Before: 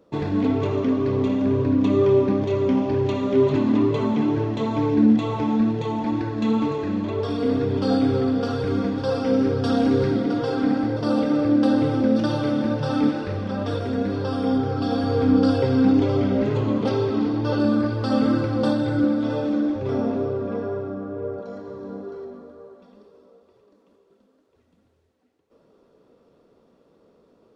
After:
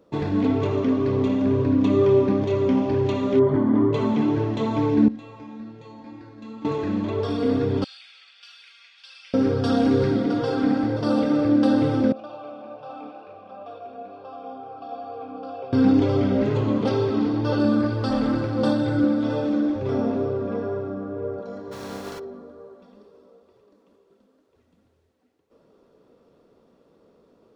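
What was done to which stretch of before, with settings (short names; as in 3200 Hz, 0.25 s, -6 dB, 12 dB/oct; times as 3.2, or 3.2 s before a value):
3.39–3.93 polynomial smoothing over 41 samples
5.08–6.65 resonator 270 Hz, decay 0.53 s, mix 90%
7.84–9.34 ladder high-pass 2200 Hz, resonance 55%
12.12–15.73 vowel filter a
18.1–18.58 tube stage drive 15 dB, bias 0.45
21.71–22.18 spectral contrast lowered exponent 0.49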